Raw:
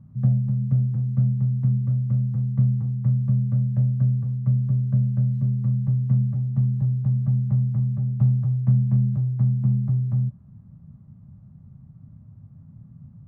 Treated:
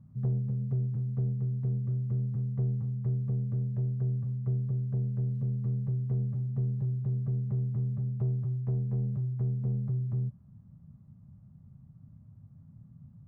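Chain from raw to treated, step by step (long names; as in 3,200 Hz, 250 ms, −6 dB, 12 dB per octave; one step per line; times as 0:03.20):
soft clipping −17 dBFS, distortion −16 dB
speech leveller
level −7 dB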